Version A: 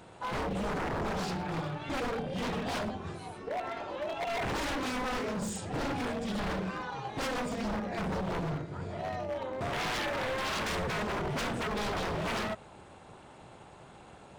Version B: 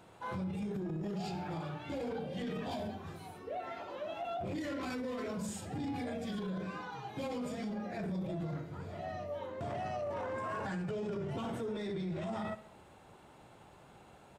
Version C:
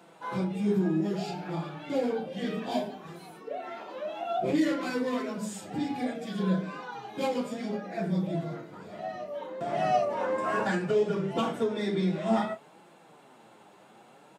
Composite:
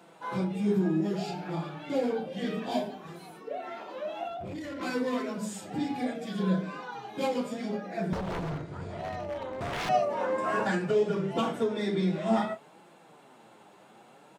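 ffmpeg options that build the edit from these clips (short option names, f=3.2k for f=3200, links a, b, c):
-filter_complex "[2:a]asplit=3[a][b][c];[a]atrim=end=4.282[d];[1:a]atrim=start=4.278:end=4.812[e];[b]atrim=start=4.808:end=8.132[f];[0:a]atrim=start=8.128:end=9.892[g];[c]atrim=start=9.888[h];[d][e]acrossfade=d=0.004:c1=hsin:c2=hsin[i];[i][f]acrossfade=d=0.004:c1=hsin:c2=hsin[j];[j][g]acrossfade=d=0.004:c1=hsin:c2=hsin[k];[k][h]acrossfade=d=0.004:c1=hsin:c2=hsin"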